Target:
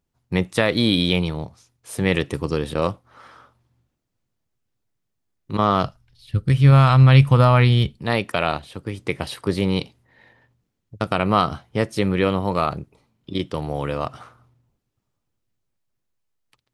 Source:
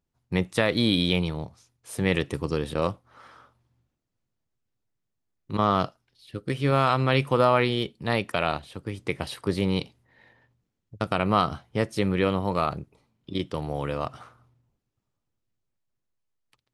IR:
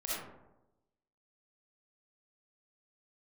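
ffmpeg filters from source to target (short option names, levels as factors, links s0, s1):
-filter_complex "[0:a]asplit=3[s0][s1][s2];[s0]afade=t=out:st=5.84:d=0.02[s3];[s1]asubboost=boost=10.5:cutoff=110,afade=t=in:st=5.84:d=0.02,afade=t=out:st=7.97:d=0.02[s4];[s2]afade=t=in:st=7.97:d=0.02[s5];[s3][s4][s5]amix=inputs=3:normalize=0,volume=1.58"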